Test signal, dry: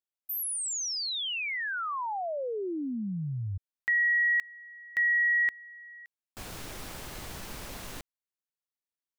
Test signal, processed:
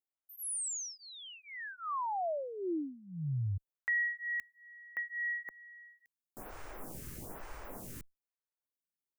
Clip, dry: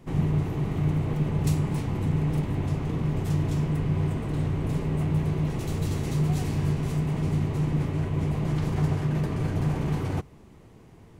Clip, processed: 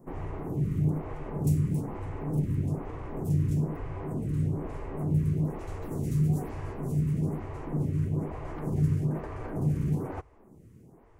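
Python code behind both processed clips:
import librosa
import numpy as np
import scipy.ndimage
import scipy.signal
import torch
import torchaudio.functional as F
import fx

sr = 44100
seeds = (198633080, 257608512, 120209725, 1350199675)

y = fx.peak_eq(x, sr, hz=3700.0, db=-14.0, octaves=1.4)
y = fx.stagger_phaser(y, sr, hz=1.1)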